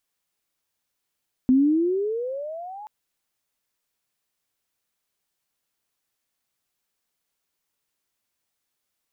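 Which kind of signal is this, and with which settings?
gliding synth tone sine, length 1.38 s, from 251 Hz, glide +21.5 st, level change -23 dB, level -13 dB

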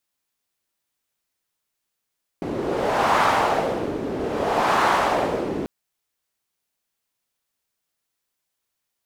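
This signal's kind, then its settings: wind-like swept noise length 3.24 s, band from 330 Hz, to 980 Hz, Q 1.8, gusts 2, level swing 9 dB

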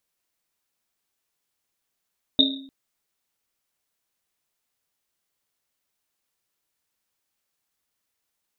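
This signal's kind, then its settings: Risset drum length 0.30 s, pitch 270 Hz, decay 0.71 s, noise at 3700 Hz, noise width 230 Hz, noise 60%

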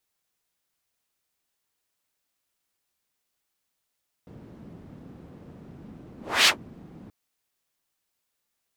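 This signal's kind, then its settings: whoosh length 2.83 s, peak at 2.2, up 0.30 s, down 0.11 s, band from 200 Hz, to 3500 Hz, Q 1.4, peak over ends 29 dB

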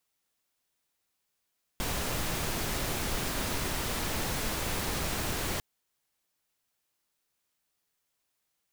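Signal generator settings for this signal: noise pink, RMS -32 dBFS 3.80 s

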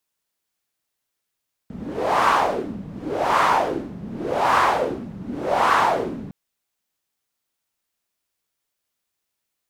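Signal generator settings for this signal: wind-like swept noise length 4.61 s, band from 180 Hz, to 1100 Hz, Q 3.2, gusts 4, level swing 17 dB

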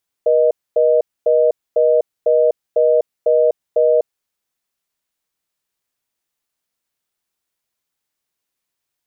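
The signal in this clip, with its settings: call progress tone reorder tone, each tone -13 dBFS 3.93 s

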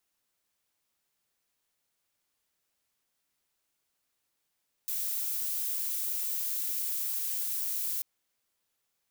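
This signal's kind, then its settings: noise violet, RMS -32.5 dBFS 3.14 s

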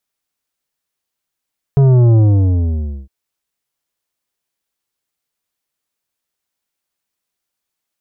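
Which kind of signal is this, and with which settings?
sub drop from 140 Hz, over 1.31 s, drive 10 dB, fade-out 0.92 s, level -7.5 dB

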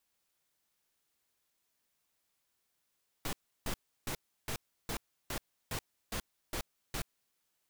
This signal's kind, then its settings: noise bursts pink, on 0.08 s, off 0.33 s, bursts 10, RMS -36.5 dBFS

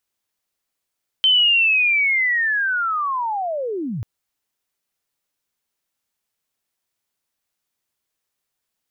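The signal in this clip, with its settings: chirp linear 3100 Hz -> 92 Hz -11.5 dBFS -> -23.5 dBFS 2.79 s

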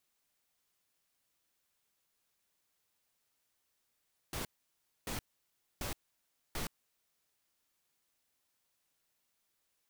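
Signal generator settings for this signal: noise bursts pink, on 0.12 s, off 0.62 s, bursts 4, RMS -38.5 dBFS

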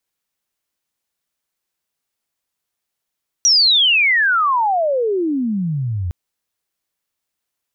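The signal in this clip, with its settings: chirp logarithmic 5900 Hz -> 83 Hz -9 dBFS -> -19 dBFS 2.66 s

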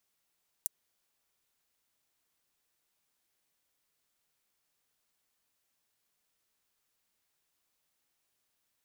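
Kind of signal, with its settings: closed hi-hat, high-pass 8100 Hz, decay 0.02 s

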